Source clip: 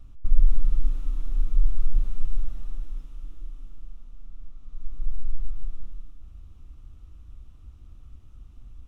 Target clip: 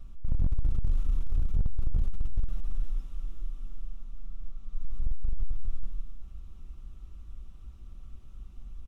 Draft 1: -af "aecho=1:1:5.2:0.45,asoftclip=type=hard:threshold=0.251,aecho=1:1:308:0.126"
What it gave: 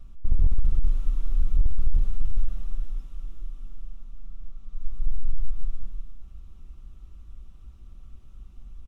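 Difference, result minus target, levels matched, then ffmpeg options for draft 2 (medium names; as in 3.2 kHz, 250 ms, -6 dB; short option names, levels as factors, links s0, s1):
hard clipper: distortion -5 dB
-af "aecho=1:1:5.2:0.45,asoftclip=type=hard:threshold=0.106,aecho=1:1:308:0.126"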